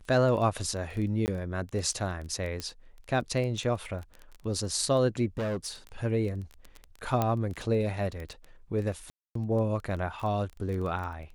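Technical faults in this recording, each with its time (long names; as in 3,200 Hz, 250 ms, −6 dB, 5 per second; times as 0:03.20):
surface crackle 13 per second −33 dBFS
0:01.26–0:01.28: drop-out 19 ms
0:02.60: click −19 dBFS
0:05.38–0:05.69: clipping −28 dBFS
0:07.22: click −13 dBFS
0:09.10–0:09.35: drop-out 253 ms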